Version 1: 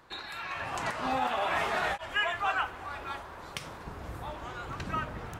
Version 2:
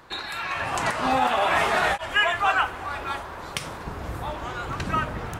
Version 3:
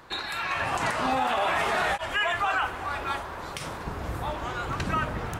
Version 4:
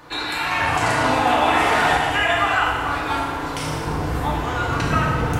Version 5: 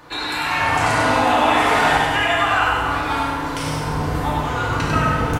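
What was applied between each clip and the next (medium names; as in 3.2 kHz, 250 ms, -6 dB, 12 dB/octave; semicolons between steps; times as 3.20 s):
dynamic bell 9.3 kHz, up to +4 dB, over -60 dBFS, Q 1.7; trim +8 dB
peak limiter -17 dBFS, peak gain reduction 8 dB
FDN reverb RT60 1.5 s, low-frequency decay 1.6×, high-frequency decay 0.9×, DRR -4 dB; trim +3 dB
delay 98 ms -4 dB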